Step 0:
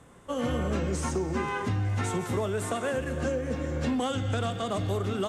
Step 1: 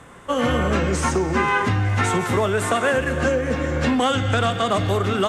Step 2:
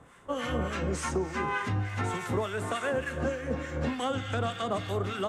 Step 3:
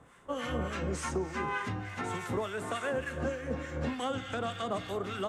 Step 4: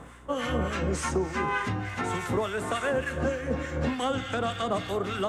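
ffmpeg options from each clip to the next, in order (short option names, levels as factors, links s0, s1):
-af "equalizer=f=1700:w=0.55:g=7,volume=2.24"
-filter_complex "[0:a]acrossover=split=1100[s0][s1];[s0]aeval=exprs='val(0)*(1-0.7/2+0.7/2*cos(2*PI*3.4*n/s))':c=same[s2];[s1]aeval=exprs='val(0)*(1-0.7/2-0.7/2*cos(2*PI*3.4*n/s))':c=same[s3];[s2][s3]amix=inputs=2:normalize=0,volume=0.422"
-af "bandreject=f=50:t=h:w=6,bandreject=f=100:t=h:w=6,volume=0.708"
-af "areverse,acompressor=mode=upward:threshold=0.0178:ratio=2.5,areverse,aeval=exprs='val(0)+0.00158*(sin(2*PI*60*n/s)+sin(2*PI*2*60*n/s)/2+sin(2*PI*3*60*n/s)/3+sin(2*PI*4*60*n/s)/4+sin(2*PI*5*60*n/s)/5)':c=same,volume=1.88"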